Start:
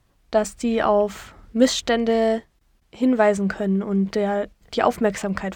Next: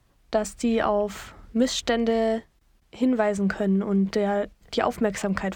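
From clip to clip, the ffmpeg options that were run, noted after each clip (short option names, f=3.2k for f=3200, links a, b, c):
-filter_complex "[0:a]acrossover=split=140[a][b];[b]acompressor=threshold=-19dB:ratio=5[c];[a][c]amix=inputs=2:normalize=0"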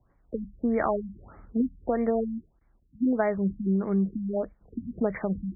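-af "afftfilt=real='re*lt(b*sr/1024,280*pow(2400/280,0.5+0.5*sin(2*PI*1.6*pts/sr)))':imag='im*lt(b*sr/1024,280*pow(2400/280,0.5+0.5*sin(2*PI*1.6*pts/sr)))':win_size=1024:overlap=0.75,volume=-2.5dB"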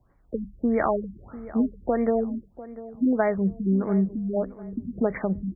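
-filter_complex "[0:a]asplit=2[a][b];[b]adelay=696,lowpass=f=1.6k:p=1,volume=-16dB,asplit=2[c][d];[d]adelay=696,lowpass=f=1.6k:p=1,volume=0.36,asplit=2[e][f];[f]adelay=696,lowpass=f=1.6k:p=1,volume=0.36[g];[a][c][e][g]amix=inputs=4:normalize=0,volume=2.5dB"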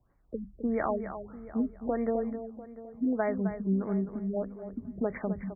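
-af "aecho=1:1:261:0.316,volume=-6.5dB"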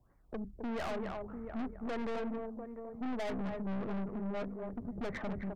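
-af "aeval=exprs='(tanh(89.1*val(0)+0.5)-tanh(0.5))/89.1':c=same,volume=3.5dB"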